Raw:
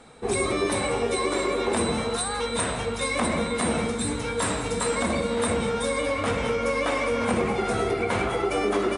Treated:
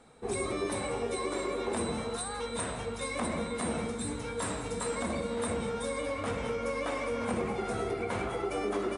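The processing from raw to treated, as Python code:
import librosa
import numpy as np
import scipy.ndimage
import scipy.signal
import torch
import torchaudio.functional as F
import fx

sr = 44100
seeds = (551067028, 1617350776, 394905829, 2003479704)

y = fx.peak_eq(x, sr, hz=3000.0, db=-3.0, octaves=2.1)
y = F.gain(torch.from_numpy(y), -7.5).numpy()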